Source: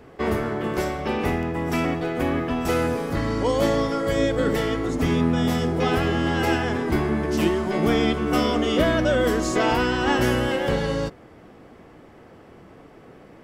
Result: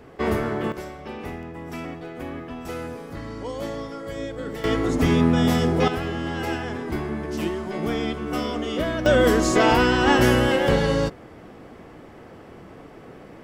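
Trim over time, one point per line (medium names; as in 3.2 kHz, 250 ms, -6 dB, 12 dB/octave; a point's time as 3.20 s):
+0.5 dB
from 0.72 s -10 dB
from 4.64 s +2.5 dB
from 5.88 s -5.5 dB
from 9.06 s +3.5 dB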